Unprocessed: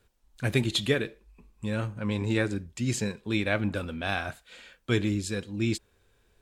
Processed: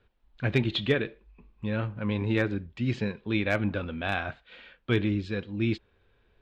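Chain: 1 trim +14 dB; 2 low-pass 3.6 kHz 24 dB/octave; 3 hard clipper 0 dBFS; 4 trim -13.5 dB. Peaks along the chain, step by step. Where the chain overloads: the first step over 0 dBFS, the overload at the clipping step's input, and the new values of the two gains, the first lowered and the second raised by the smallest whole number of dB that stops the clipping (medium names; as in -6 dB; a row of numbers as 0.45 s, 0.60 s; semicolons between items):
+4.0 dBFS, +3.5 dBFS, 0.0 dBFS, -13.5 dBFS; step 1, 3.5 dB; step 1 +10 dB, step 4 -9.5 dB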